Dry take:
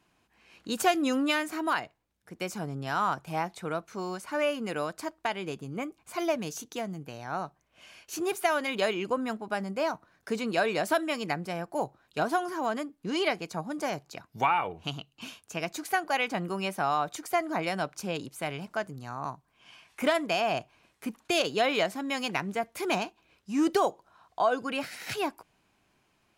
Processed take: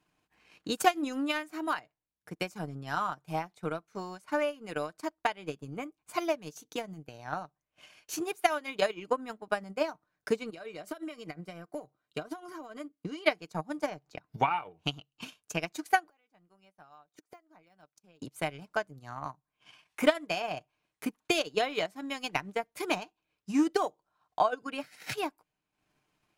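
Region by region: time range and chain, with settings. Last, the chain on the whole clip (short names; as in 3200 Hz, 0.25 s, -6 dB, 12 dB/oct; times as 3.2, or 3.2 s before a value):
10.5–13.26 compressor 16:1, threshold -32 dBFS + notch comb 860 Hz
13.86–14.51 LPF 3200 Hz 6 dB/oct + upward compressor, threshold -40 dBFS
16.04–18.22 de-esser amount 100% + flipped gate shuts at -34 dBFS, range -25 dB
whole clip: comb 6.6 ms, depth 33%; transient shaper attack +10 dB, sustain -10 dB; gain -7 dB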